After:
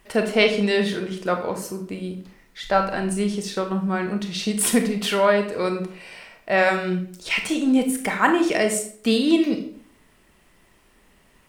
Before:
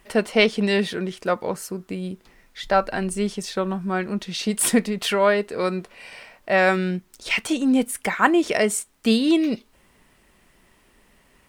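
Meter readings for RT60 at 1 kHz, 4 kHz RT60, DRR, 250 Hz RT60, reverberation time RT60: 0.55 s, 0.40 s, 5.0 dB, 0.60 s, 0.55 s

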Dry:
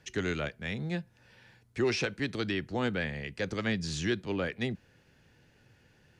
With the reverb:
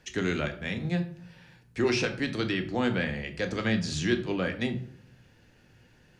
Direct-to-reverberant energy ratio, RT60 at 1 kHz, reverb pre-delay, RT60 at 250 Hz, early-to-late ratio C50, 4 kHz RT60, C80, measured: 5.5 dB, 0.55 s, 3 ms, 0.80 s, 12.0 dB, 0.35 s, 16.0 dB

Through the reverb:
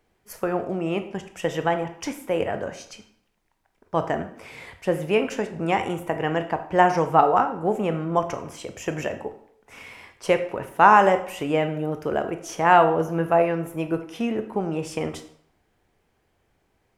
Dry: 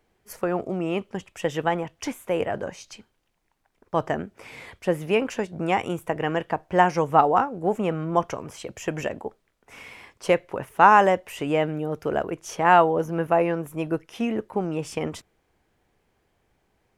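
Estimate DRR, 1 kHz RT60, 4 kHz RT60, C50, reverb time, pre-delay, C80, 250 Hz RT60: 8.0 dB, 0.65 s, 0.50 s, 11.0 dB, 0.65 s, 17 ms, 14.0 dB, 0.65 s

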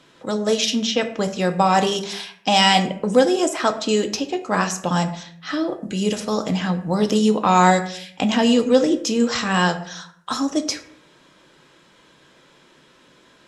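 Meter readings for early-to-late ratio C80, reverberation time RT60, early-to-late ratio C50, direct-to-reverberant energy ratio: 15.5 dB, 0.65 s, 12.5 dB, 6.0 dB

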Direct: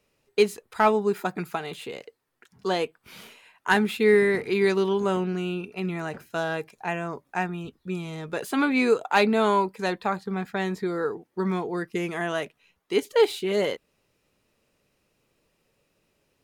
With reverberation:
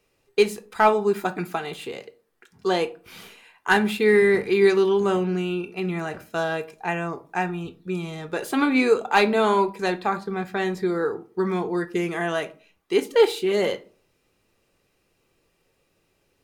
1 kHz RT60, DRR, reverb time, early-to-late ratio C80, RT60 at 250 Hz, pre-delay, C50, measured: 0.35 s, 7.0 dB, 0.40 s, 24.0 dB, 0.45 s, 3 ms, 18.0 dB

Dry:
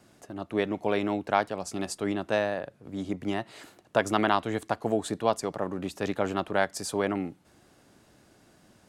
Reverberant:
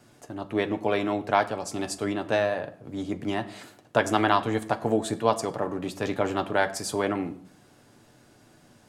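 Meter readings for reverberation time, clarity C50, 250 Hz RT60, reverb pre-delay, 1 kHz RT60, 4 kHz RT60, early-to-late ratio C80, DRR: 0.60 s, 16.0 dB, 0.75 s, 7 ms, 0.60 s, 0.40 s, 18.0 dB, 6.0 dB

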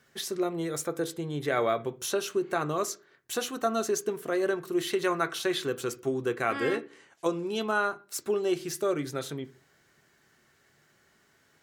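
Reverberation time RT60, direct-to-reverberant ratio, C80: 0.40 s, 9.0 dB, 24.5 dB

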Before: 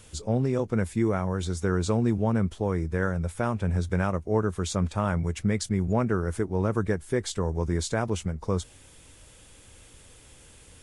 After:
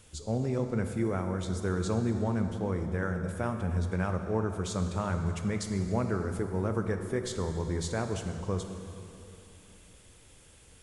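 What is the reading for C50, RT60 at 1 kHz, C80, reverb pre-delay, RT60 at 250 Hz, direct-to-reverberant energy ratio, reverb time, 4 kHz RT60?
6.5 dB, 2.9 s, 7.5 dB, 26 ms, 3.3 s, 6.0 dB, 3.0 s, 2.5 s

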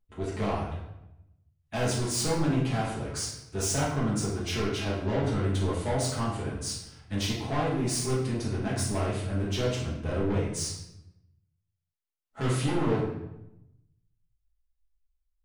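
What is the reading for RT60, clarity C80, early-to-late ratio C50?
0.90 s, 6.0 dB, 3.0 dB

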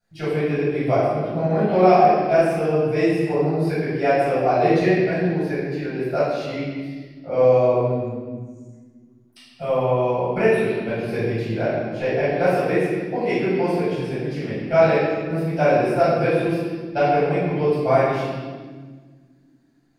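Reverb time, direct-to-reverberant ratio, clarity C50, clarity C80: 1.6 s, -13.5 dB, -2.5 dB, 0.5 dB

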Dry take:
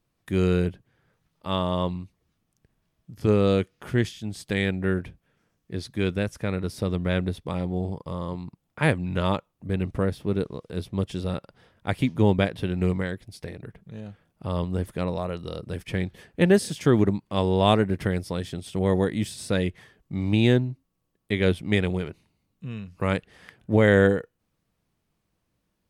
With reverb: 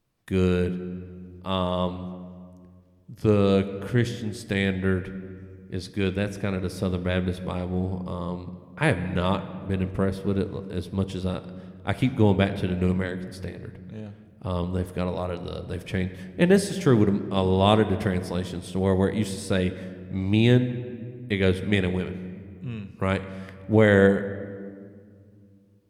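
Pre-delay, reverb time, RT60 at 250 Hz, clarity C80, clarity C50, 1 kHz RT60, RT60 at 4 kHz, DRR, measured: 9 ms, 2.0 s, 3.1 s, 13.5 dB, 12.5 dB, 1.8 s, 1.2 s, 11.0 dB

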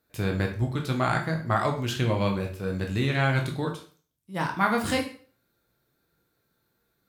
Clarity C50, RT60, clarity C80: 8.5 dB, 0.40 s, 13.0 dB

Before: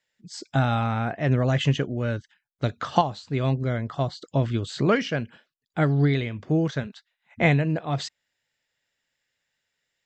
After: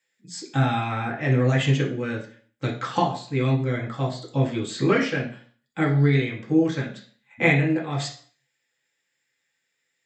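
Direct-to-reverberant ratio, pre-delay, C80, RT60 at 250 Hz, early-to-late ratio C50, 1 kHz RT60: -2.0 dB, 3 ms, 13.5 dB, 0.45 s, 8.5 dB, 0.50 s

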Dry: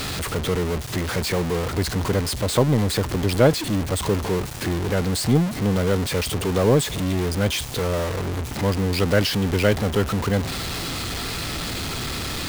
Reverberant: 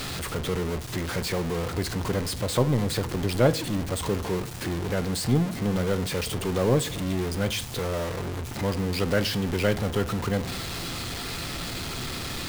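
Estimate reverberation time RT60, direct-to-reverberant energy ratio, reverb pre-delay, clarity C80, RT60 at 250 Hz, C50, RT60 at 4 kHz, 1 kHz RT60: 0.55 s, 10.5 dB, 6 ms, 22.0 dB, 0.95 s, 18.0 dB, 0.35 s, 0.50 s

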